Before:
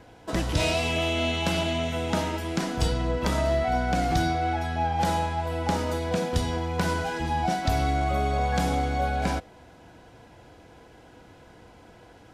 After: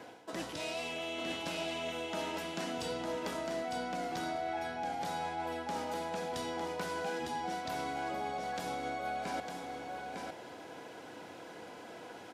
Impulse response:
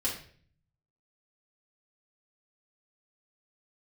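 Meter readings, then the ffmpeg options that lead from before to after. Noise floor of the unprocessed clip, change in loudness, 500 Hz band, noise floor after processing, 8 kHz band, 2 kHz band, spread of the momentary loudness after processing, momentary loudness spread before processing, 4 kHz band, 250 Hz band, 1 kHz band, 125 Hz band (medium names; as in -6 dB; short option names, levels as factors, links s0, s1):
-52 dBFS, -12.0 dB, -9.5 dB, -50 dBFS, -9.5 dB, -9.0 dB, 11 LU, 4 LU, -9.5 dB, -12.0 dB, -9.5 dB, -23.0 dB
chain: -af "highpass=260,areverse,acompressor=threshold=0.00891:ratio=5,areverse,aecho=1:1:905:0.596,volume=1.41"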